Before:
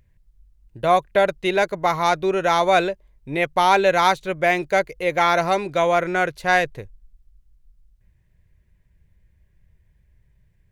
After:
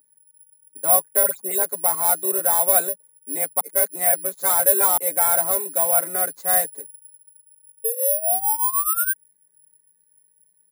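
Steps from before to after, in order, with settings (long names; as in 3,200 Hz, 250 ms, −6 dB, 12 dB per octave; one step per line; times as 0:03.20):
0:01.23–0:01.63: all-pass dispersion highs, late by 110 ms, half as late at 2,800 Hz
0:03.60–0:04.97: reverse
0:07.84–0:09.13: sound drawn into the spectrogram rise 440–1,600 Hz −20 dBFS
comb filter 7.1 ms, depth 75%
bad sample-rate conversion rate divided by 4×, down none, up zero stuff
Butterworth high-pass 190 Hz 48 dB per octave
parametric band 2,700 Hz −12 dB 0.73 octaves
level −9 dB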